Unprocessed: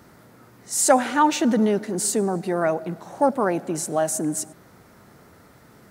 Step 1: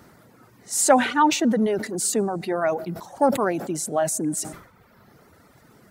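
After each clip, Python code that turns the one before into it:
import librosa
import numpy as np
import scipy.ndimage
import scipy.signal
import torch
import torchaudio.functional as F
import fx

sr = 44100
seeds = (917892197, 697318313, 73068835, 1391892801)

y = fx.dereverb_blind(x, sr, rt60_s=1.1)
y = fx.sustainer(y, sr, db_per_s=95.0)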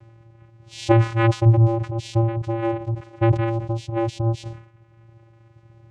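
y = fx.vocoder(x, sr, bands=4, carrier='square', carrier_hz=114.0)
y = y * 10.0 ** (3.0 / 20.0)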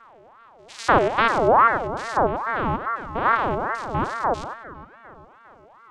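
y = fx.spec_steps(x, sr, hold_ms=100)
y = fx.echo_wet_bandpass(y, sr, ms=402, feedback_pct=48, hz=720.0, wet_db=-9)
y = fx.ring_lfo(y, sr, carrier_hz=880.0, swing_pct=45, hz=2.4)
y = y * 10.0 ** (2.5 / 20.0)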